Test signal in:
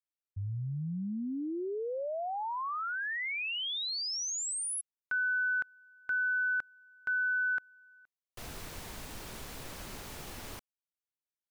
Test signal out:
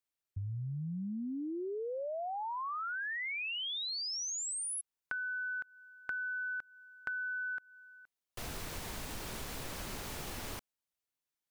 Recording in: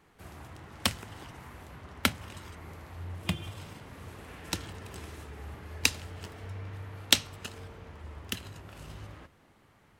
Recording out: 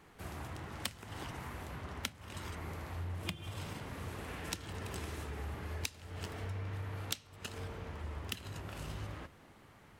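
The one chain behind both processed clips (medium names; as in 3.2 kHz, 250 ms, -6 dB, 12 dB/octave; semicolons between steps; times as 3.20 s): compression 20:1, threshold -39 dBFS; trim +3 dB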